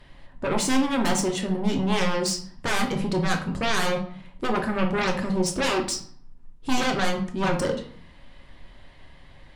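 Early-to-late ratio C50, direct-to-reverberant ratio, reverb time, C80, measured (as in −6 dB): 9.5 dB, 2.5 dB, 0.55 s, 13.5 dB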